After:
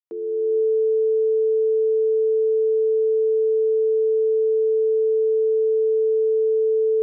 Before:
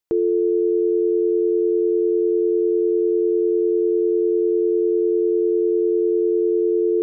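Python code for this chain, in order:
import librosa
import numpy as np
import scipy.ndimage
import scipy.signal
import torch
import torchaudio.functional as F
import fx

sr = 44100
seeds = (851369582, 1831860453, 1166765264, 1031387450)

y = fx.fade_in_head(x, sr, length_s=0.58)
y = scipy.signal.sosfilt(scipy.signal.ellip(4, 1.0, 40, 200.0, 'highpass', fs=sr, output='sos'), y)
y = fx.hum_notches(y, sr, base_hz=50, count=7)
y = y * 10.0 ** (2.5 / 20.0)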